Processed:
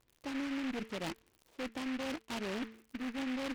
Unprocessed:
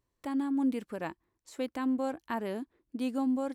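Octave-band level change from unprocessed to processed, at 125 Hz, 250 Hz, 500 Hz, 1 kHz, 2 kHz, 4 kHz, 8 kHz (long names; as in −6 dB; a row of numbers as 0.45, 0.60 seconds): −0.5, −7.0, −6.0, −6.5, +2.5, +6.5, +2.5 decibels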